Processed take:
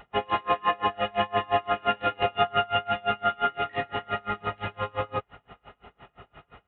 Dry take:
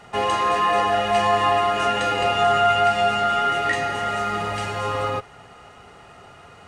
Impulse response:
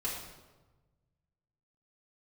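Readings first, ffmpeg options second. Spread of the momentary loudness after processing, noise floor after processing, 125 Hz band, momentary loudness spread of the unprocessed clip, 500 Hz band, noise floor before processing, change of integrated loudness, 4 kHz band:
7 LU, −73 dBFS, −6.5 dB, 8 LU, −7.0 dB, −47 dBFS, −7.0 dB, −6.5 dB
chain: -af "aeval=exprs='val(0)+0.00178*(sin(2*PI*50*n/s)+sin(2*PI*2*50*n/s)/2+sin(2*PI*3*50*n/s)/3+sin(2*PI*4*50*n/s)/4+sin(2*PI*5*50*n/s)/5)':channel_layout=same,aresample=8000,aresample=44100,aeval=exprs='val(0)*pow(10,-31*(0.5-0.5*cos(2*PI*5.8*n/s))/20)':channel_layout=same"

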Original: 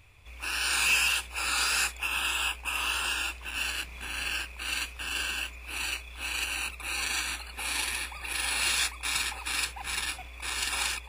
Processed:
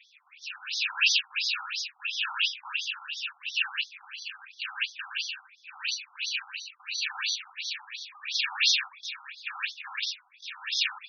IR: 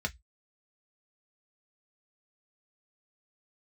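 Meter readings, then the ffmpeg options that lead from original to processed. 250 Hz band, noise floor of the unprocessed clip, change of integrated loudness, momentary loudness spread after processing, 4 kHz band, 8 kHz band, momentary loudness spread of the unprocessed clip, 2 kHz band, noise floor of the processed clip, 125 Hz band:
below −40 dB, −45 dBFS, −0.5 dB, 16 LU, +2.0 dB, −6.5 dB, 9 LU, −2.0 dB, −62 dBFS, below −40 dB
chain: -af "tremolo=f=0.82:d=0.72,crystalizer=i=5.5:c=0,afftfilt=real='re*between(b*sr/1024,990*pow(4700/990,0.5+0.5*sin(2*PI*2.9*pts/sr))/1.41,990*pow(4700/990,0.5+0.5*sin(2*PI*2.9*pts/sr))*1.41)':imag='im*between(b*sr/1024,990*pow(4700/990,0.5+0.5*sin(2*PI*2.9*pts/sr))/1.41,990*pow(4700/990,0.5+0.5*sin(2*PI*2.9*pts/sr))*1.41)':win_size=1024:overlap=0.75"

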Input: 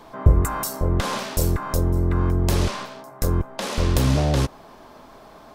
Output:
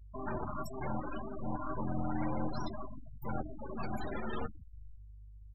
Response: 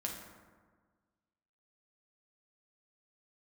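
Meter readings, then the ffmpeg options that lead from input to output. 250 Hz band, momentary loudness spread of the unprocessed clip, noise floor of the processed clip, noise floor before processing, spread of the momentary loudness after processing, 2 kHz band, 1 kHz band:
−12.5 dB, 8 LU, −52 dBFS, −46 dBFS, 19 LU, −15.0 dB, −10.5 dB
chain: -filter_complex "[0:a]aeval=exprs='(mod(9.44*val(0)+1,2)-1)/9.44':channel_layout=same,agate=range=-33dB:threshold=-34dB:ratio=3:detection=peak,bandreject=frequency=50:width_type=h:width=6,bandreject=frequency=100:width_type=h:width=6,bandreject=frequency=150:width_type=h:width=6,bandreject=frequency=200:width_type=h:width=6,alimiter=level_in=2.5dB:limit=-24dB:level=0:latency=1:release=128,volume=-2.5dB,bandreject=frequency=500:width=16,aeval=exprs='(tanh(35.5*val(0)+0.75)-tanh(0.75))/35.5':channel_layout=same,asplit=2[link_01][link_02];[link_02]adelay=506,lowpass=frequency=5000:poles=1,volume=-15dB,asplit=2[link_03][link_04];[link_04]adelay=506,lowpass=frequency=5000:poles=1,volume=0.37,asplit=2[link_05][link_06];[link_06]adelay=506,lowpass=frequency=5000:poles=1,volume=0.37[link_07];[link_01][link_03][link_05][link_07]amix=inputs=4:normalize=0,asplit=2[link_08][link_09];[1:a]atrim=start_sample=2205,adelay=8[link_10];[link_09][link_10]afir=irnorm=-1:irlink=0,volume=-4.5dB[link_11];[link_08][link_11]amix=inputs=2:normalize=0,aeval=exprs='val(0)+0.00447*(sin(2*PI*50*n/s)+sin(2*PI*2*50*n/s)/2+sin(2*PI*3*50*n/s)/3+sin(2*PI*4*50*n/s)/4+sin(2*PI*5*50*n/s)/5)':channel_layout=same,afftfilt=real='re*gte(hypot(re,im),0.0355)':imag='im*gte(hypot(re,im),0.0355)':win_size=1024:overlap=0.75,asplit=2[link_12][link_13];[link_13]adelay=13,volume=-11dB[link_14];[link_12][link_14]amix=inputs=2:normalize=0,adynamicequalizer=threshold=0.00141:dfrequency=2200:dqfactor=0.7:tfrequency=2200:tqfactor=0.7:attack=5:release=100:ratio=0.375:range=2:mode=boostabove:tftype=highshelf"

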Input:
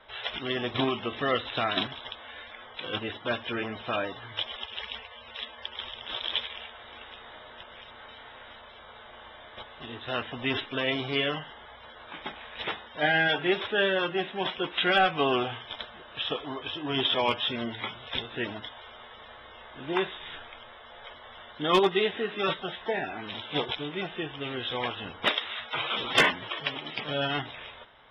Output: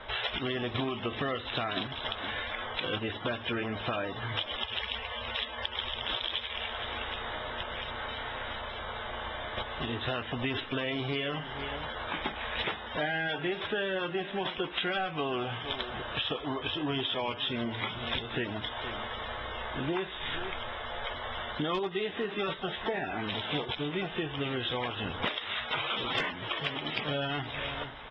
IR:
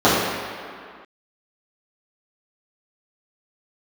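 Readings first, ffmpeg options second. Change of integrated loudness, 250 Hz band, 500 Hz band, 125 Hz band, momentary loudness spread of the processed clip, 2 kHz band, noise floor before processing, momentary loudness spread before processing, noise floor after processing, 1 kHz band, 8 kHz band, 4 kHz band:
−4.0 dB, −1.5 dB, −4.0 dB, +2.0 dB, 5 LU, −3.5 dB, −49 dBFS, 21 LU, −41 dBFS, −3.0 dB, can't be measured, −2.5 dB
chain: -filter_complex "[0:a]lowpass=4700,asplit=2[link_01][link_02];[link_02]alimiter=limit=-21dB:level=0:latency=1,volume=-1.5dB[link_03];[link_01][link_03]amix=inputs=2:normalize=0,lowshelf=frequency=120:gain=7.5,aecho=1:1:466:0.1,acompressor=threshold=-35dB:ratio=6,volume=4.5dB"

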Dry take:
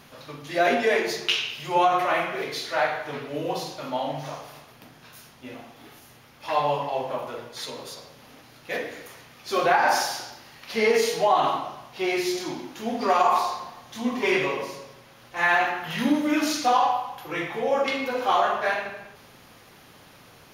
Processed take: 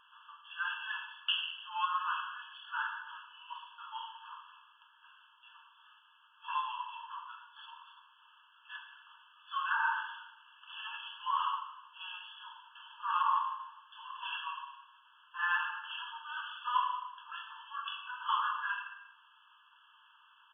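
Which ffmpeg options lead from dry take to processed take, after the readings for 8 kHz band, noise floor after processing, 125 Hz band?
below −40 dB, −64 dBFS, below −40 dB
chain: -af "aresample=8000,aresample=44100,afftfilt=real='re*eq(mod(floor(b*sr/1024/870),2),1)':imag='im*eq(mod(floor(b*sr/1024/870),2),1)':win_size=1024:overlap=0.75,volume=-6.5dB"

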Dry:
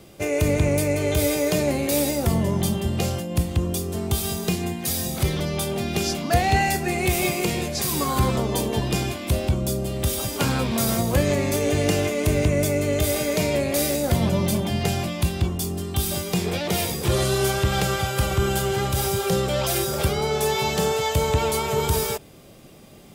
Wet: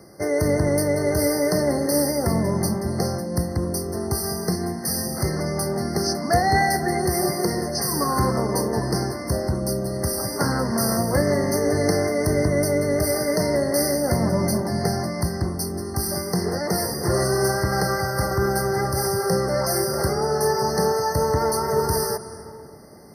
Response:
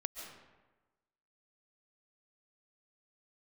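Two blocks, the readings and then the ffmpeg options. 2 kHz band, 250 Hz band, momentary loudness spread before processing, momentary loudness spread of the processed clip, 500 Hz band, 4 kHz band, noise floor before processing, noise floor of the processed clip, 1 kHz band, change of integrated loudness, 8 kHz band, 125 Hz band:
−0.5 dB, +1.0 dB, 4 LU, 5 LU, +2.0 dB, −2.0 dB, −40 dBFS, −35 dBFS, +2.5 dB, +0.5 dB, +0.5 dB, −1.5 dB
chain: -filter_complex "[0:a]highpass=frequency=140:poles=1,asplit=2[link_01][link_02];[1:a]atrim=start_sample=2205,asetrate=23814,aresample=44100,highshelf=frequency=7400:gain=7[link_03];[link_02][link_03]afir=irnorm=-1:irlink=0,volume=-11.5dB[link_04];[link_01][link_04]amix=inputs=2:normalize=0,afftfilt=real='re*eq(mod(floor(b*sr/1024/2100),2),0)':imag='im*eq(mod(floor(b*sr/1024/2100),2),0)':win_size=1024:overlap=0.75"

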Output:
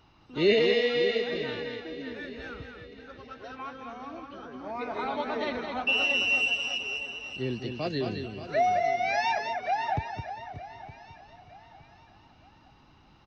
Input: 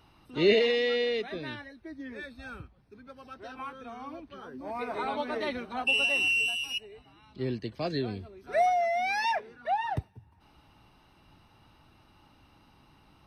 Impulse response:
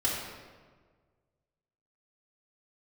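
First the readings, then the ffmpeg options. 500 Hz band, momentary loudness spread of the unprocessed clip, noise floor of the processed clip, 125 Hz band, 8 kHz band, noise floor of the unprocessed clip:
+1.5 dB, 20 LU, −58 dBFS, +1.5 dB, −1.0 dB, −62 dBFS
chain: -filter_complex "[0:a]asplit=2[link_01][link_02];[link_02]aecho=0:1:213|566|586:0.501|0.106|0.282[link_03];[link_01][link_03]amix=inputs=2:normalize=0,aresample=16000,aresample=44100,asplit=2[link_04][link_05];[link_05]aecho=0:1:914|1828|2742:0.158|0.0602|0.0229[link_06];[link_04][link_06]amix=inputs=2:normalize=0"

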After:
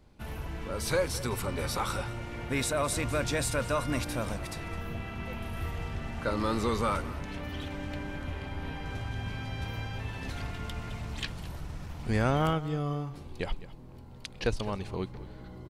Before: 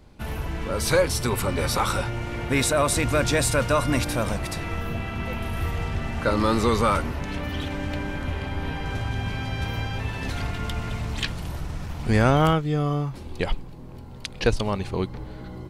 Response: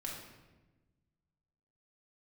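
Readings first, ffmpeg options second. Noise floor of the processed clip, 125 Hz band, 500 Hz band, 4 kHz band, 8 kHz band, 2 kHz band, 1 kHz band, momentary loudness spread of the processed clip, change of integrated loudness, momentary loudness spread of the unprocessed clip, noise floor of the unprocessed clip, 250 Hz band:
−47 dBFS, −8.0 dB, −8.0 dB, −8.0 dB, −8.0 dB, −8.0 dB, −8.0 dB, 11 LU, −8.0 dB, 11 LU, −39 dBFS, −8.0 dB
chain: -af "aecho=1:1:210:0.141,volume=-8dB"

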